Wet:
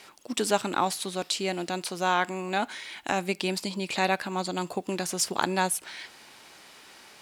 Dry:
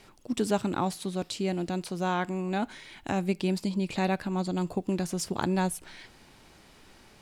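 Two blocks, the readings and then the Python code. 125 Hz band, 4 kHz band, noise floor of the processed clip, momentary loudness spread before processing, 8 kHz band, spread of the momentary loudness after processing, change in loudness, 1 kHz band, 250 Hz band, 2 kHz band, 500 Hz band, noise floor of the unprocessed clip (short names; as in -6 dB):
-5.5 dB, +8.0 dB, -54 dBFS, 6 LU, +8.0 dB, 9 LU, +1.5 dB, +5.0 dB, -4.0 dB, +7.0 dB, +1.0 dB, -56 dBFS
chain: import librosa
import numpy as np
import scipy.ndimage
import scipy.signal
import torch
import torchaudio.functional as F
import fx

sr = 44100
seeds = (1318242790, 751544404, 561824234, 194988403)

y = fx.highpass(x, sr, hz=870.0, slope=6)
y = y * librosa.db_to_amplitude(8.0)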